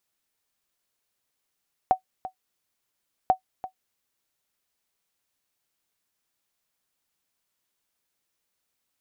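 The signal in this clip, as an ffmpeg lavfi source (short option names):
-f lavfi -i "aevalsrc='0.335*(sin(2*PI*750*mod(t,1.39))*exp(-6.91*mod(t,1.39)/0.1)+0.178*sin(2*PI*750*max(mod(t,1.39)-0.34,0))*exp(-6.91*max(mod(t,1.39)-0.34,0)/0.1))':d=2.78:s=44100"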